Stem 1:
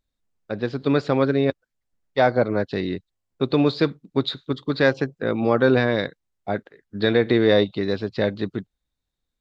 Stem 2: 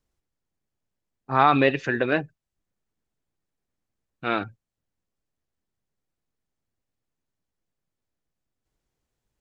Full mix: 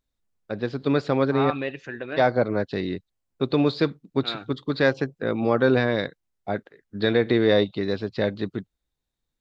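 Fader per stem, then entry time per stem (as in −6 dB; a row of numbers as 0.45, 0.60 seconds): −2.0, −10.0 decibels; 0.00, 0.00 seconds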